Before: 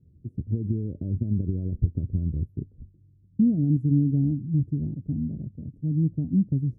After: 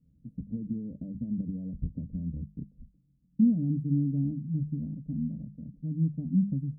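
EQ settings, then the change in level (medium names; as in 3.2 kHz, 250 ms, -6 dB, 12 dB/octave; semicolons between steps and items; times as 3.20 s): bass shelf 490 Hz +8 dB; hum notches 50/100/150/200 Hz; static phaser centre 370 Hz, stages 6; -8.0 dB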